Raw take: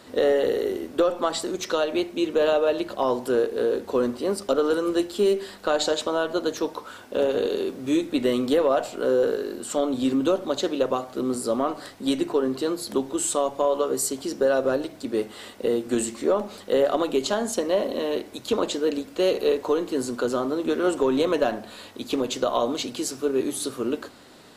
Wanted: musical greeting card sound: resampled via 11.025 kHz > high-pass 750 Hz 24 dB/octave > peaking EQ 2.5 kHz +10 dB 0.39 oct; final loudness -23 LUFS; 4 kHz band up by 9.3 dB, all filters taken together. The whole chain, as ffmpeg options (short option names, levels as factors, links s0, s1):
-af "equalizer=f=4000:t=o:g=9,aresample=11025,aresample=44100,highpass=f=750:w=0.5412,highpass=f=750:w=1.3066,equalizer=f=2500:t=o:w=0.39:g=10,volume=1.78"